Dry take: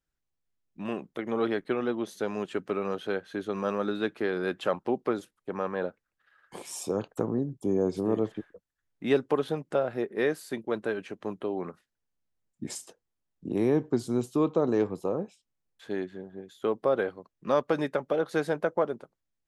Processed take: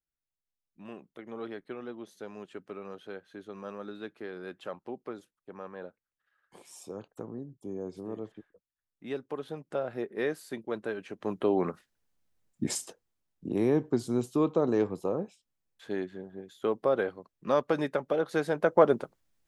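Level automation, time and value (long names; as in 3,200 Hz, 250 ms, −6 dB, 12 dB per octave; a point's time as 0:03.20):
0:09.26 −11.5 dB
0:09.92 −4 dB
0:11.03 −4 dB
0:11.49 +6 dB
0:12.63 +6 dB
0:13.55 −1 dB
0:18.51 −1 dB
0:18.94 +9.5 dB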